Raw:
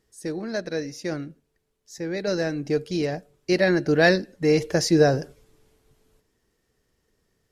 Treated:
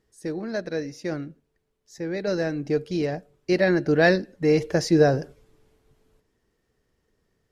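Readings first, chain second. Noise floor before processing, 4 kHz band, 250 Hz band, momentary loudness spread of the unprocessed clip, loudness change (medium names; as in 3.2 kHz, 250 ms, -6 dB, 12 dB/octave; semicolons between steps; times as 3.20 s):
-73 dBFS, -4.0 dB, 0.0 dB, 15 LU, -0.5 dB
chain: treble shelf 3.9 kHz -7.5 dB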